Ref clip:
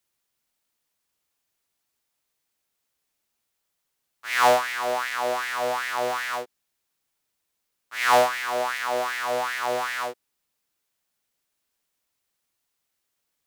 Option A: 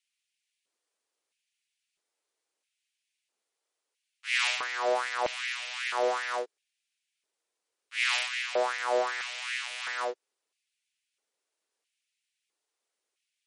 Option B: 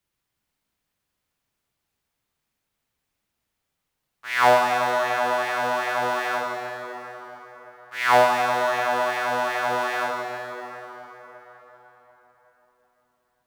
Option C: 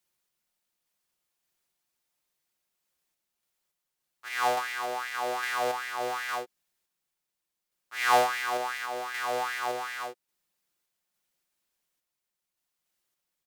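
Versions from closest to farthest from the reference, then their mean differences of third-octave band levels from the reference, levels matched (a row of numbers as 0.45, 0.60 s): C, B, A; 1.5, 5.0, 8.5 dB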